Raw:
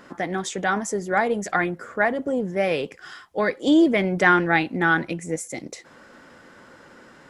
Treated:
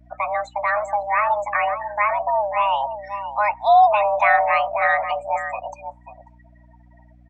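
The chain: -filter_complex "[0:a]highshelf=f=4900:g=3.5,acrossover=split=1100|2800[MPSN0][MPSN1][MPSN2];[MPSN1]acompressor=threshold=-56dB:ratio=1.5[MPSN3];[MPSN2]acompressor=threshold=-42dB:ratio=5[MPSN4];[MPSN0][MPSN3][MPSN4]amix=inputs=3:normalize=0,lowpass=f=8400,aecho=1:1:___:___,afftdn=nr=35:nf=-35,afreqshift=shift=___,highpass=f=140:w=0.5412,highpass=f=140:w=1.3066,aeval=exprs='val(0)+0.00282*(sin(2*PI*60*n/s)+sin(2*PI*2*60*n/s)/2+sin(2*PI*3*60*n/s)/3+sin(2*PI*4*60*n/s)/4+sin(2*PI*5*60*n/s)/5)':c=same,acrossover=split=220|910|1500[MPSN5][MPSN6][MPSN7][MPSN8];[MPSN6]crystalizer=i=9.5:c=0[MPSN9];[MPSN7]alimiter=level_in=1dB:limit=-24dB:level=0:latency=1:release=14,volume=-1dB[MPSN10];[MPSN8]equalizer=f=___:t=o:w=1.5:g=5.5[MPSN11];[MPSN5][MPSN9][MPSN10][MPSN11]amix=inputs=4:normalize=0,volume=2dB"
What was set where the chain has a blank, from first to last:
539, 0.316, 410, 2100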